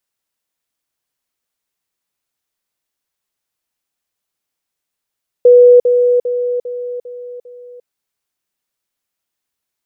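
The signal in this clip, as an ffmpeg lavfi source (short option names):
-f lavfi -i "aevalsrc='pow(10,(-2.5-6*floor(t/0.4))/20)*sin(2*PI*490*t)*clip(min(mod(t,0.4),0.35-mod(t,0.4))/0.005,0,1)':d=2.4:s=44100"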